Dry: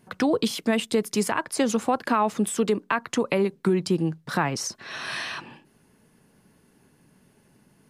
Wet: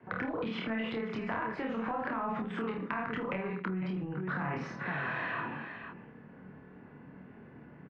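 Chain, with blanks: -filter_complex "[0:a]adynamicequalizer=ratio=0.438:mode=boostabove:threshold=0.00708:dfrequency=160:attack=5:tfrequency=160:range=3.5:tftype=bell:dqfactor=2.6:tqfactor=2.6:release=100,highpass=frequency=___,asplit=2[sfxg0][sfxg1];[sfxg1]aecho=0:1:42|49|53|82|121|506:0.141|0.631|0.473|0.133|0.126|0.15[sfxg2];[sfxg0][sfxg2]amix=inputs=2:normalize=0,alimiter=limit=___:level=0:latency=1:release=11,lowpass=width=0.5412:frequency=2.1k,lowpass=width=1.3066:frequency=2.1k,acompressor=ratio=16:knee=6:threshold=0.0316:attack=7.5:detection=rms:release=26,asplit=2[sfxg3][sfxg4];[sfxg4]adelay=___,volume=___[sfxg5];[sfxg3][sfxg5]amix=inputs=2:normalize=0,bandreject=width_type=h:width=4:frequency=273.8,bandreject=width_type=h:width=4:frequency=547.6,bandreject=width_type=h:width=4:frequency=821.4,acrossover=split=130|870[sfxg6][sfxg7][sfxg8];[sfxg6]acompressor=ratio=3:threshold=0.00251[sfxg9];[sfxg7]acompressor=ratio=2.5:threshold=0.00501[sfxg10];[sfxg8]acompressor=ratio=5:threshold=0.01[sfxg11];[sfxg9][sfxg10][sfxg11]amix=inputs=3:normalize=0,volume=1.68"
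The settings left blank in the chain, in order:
55, 0.178, 27, 0.708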